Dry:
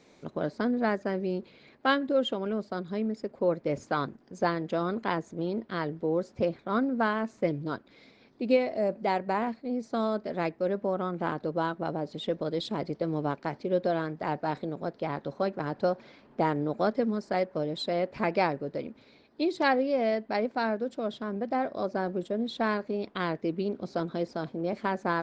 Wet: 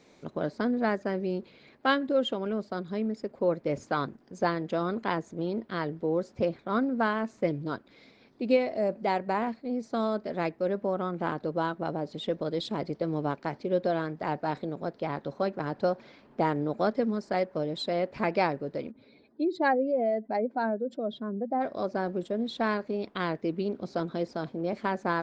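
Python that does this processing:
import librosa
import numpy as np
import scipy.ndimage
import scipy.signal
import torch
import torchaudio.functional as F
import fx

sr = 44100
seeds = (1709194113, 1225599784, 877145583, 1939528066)

y = fx.spec_expand(x, sr, power=1.6, at=(18.9, 21.6), fade=0.02)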